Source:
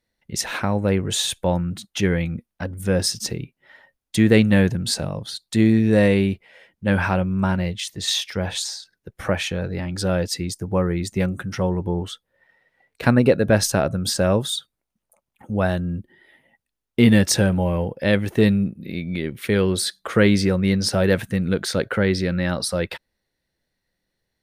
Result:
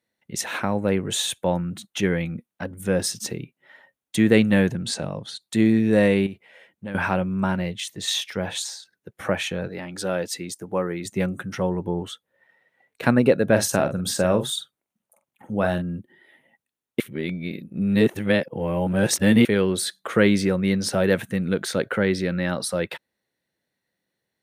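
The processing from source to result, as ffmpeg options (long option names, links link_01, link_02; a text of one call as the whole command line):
ffmpeg -i in.wav -filter_complex "[0:a]asettb=1/sr,asplit=3[link_01][link_02][link_03];[link_01]atrim=end=4.734[link_04];[link_02]atrim=start=4.73:end=5.41,asetpts=PTS-STARTPTS,afade=type=in:duration=0.004:curve=qsin,afade=type=out:start_time=0.676:duration=0.004:curve=qsin,lowpass=8200[link_05];[link_03]atrim=start=5.406[link_06];[link_04][link_05]acrossfade=duration=0.004:curve1=hsin:curve2=qsin[link_07];[link_07][link_06]acrossfade=duration=0.004:curve1=qsin:curve2=hsin,asettb=1/sr,asplit=3[link_08][link_09][link_10];[link_08]atrim=end=6.264[link_11];[link_09]atrim=start=6.26:end=6.95,asetpts=PTS-STARTPTS,afade=type=in:duration=0.004:curve=qsin,afade=type=out:start_time=0.686:duration=0.004:curve=qsin,acompressor=threshold=-27dB:ratio=6:attack=3.2:release=140:knee=1:detection=peak[link_12];[link_10]atrim=start=6.946[link_13];[link_11][link_12]acrossfade=duration=0.004:curve1=hsin:curve2=qsin[link_14];[link_14][link_13]acrossfade=duration=0.004:curve1=qsin:curve2=hsin,asettb=1/sr,asplit=3[link_15][link_16][link_17];[link_15]atrim=end=9.684[link_18];[link_16]atrim=start=9.68:end=11.05,asetpts=PTS-STARTPTS,afade=type=in:duration=0.004:curve=qsin,afade=type=out:start_time=1.366:duration=0.004:curve=qsin,highpass=frequency=290:poles=1[link_19];[link_17]atrim=start=11.046[link_20];[link_18][link_19]acrossfade=duration=0.004:curve1=hsin:curve2=qsin[link_21];[link_21][link_20]acrossfade=duration=0.004:curve1=qsin:curve2=hsin,asettb=1/sr,asplit=3[link_22][link_23][link_24];[link_22]atrim=end=13.514[link_25];[link_23]atrim=start=13.51:end=15.82,asetpts=PTS-STARTPTS,afade=type=in:duration=0.004:curve=qsin,afade=type=out:start_time=2.306:duration=0.004:curve=qsin,asplit=2[link_26][link_27];[link_27]adelay=45,volume=-9dB[link_28];[link_26][link_28]amix=inputs=2:normalize=0,atrim=end_sample=101871[link_29];[link_24]atrim=start=15.816[link_30];[link_25][link_29]acrossfade=duration=0.004:curve1=hsin:curve2=qsin[link_31];[link_31][link_30]acrossfade=duration=0.004:curve1=qsin:curve2=hsin,asplit=3[link_32][link_33][link_34];[link_32]atrim=end=17.002[link_35];[link_33]atrim=start=16.998:end=19.452,asetpts=PTS-STARTPTS,areverse[link_36];[link_34]atrim=start=19.448[link_37];[link_35][link_36]acrossfade=duration=0.004:curve1=hsin:curve2=hsin[link_38];[link_38][link_37]acrossfade=duration=0.004:curve1=hsin:curve2=hsin,highpass=140,equalizer=frequency=4900:width_type=o:width=0.4:gain=-6,volume=-1dB" out.wav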